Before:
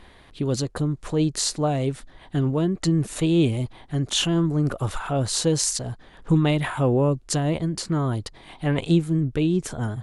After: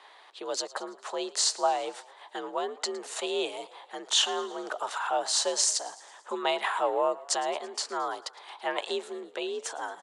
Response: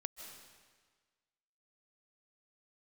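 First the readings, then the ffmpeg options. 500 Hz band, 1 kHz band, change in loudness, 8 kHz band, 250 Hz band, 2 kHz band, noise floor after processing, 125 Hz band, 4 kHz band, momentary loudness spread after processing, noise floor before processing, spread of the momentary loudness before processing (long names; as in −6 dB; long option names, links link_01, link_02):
−4.5 dB, +2.5 dB, −6.0 dB, −1.5 dB, −19.5 dB, −1.0 dB, −54 dBFS, below −40 dB, 0.0 dB, 16 LU, −50 dBFS, 9 LU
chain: -filter_complex "[0:a]highpass=frequency=430:width=0.5412,highpass=frequency=430:width=1.3066,equalizer=frequency=450:width_type=q:width=4:gain=-8,equalizer=frequency=850:width_type=q:width=4:gain=5,equalizer=frequency=2200:width_type=q:width=4:gain=-4,lowpass=frequency=8400:width=0.5412,lowpass=frequency=8400:width=1.3066,afreqshift=58,asplit=6[link_01][link_02][link_03][link_04][link_05][link_06];[link_02]adelay=111,afreqshift=35,volume=-20dB[link_07];[link_03]adelay=222,afreqshift=70,volume=-24.7dB[link_08];[link_04]adelay=333,afreqshift=105,volume=-29.5dB[link_09];[link_05]adelay=444,afreqshift=140,volume=-34.2dB[link_10];[link_06]adelay=555,afreqshift=175,volume=-38.9dB[link_11];[link_01][link_07][link_08][link_09][link_10][link_11]amix=inputs=6:normalize=0"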